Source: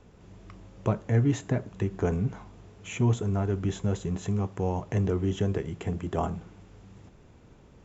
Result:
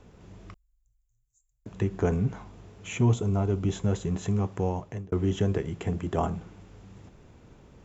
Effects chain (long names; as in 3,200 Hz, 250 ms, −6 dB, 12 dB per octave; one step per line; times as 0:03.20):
0:00.54–0:01.66: inverse Chebyshev band-stop filter 150–2,700 Hz, stop band 80 dB
0:03.11–0:03.73: parametric band 1,700 Hz −11.5 dB 0.32 octaves
0:04.61–0:05.12: fade out
level +1.5 dB